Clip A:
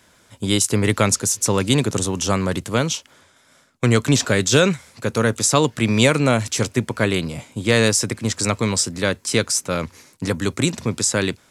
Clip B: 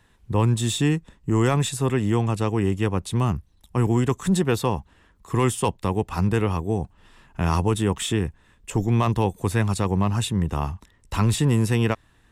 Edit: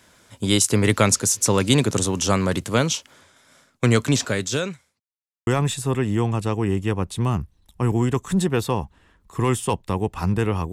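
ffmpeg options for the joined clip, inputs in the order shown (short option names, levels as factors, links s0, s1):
-filter_complex "[0:a]apad=whole_dur=10.72,atrim=end=10.72,asplit=2[s0][s1];[s0]atrim=end=5,asetpts=PTS-STARTPTS,afade=t=out:st=3.75:d=1.25[s2];[s1]atrim=start=5:end=5.47,asetpts=PTS-STARTPTS,volume=0[s3];[1:a]atrim=start=1.42:end=6.67,asetpts=PTS-STARTPTS,afade=t=in:d=0.004:c=hsin[s4];[s2][s3][s4]concat=n=3:v=0:a=1"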